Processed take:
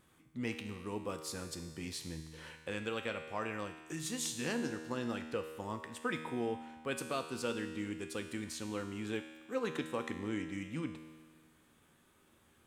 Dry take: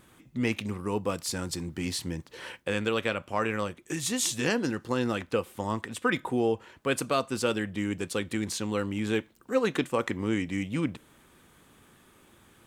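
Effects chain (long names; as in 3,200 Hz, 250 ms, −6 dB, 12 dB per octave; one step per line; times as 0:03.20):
tuned comb filter 79 Hz, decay 1.6 s, harmonics all, mix 80%
level +2 dB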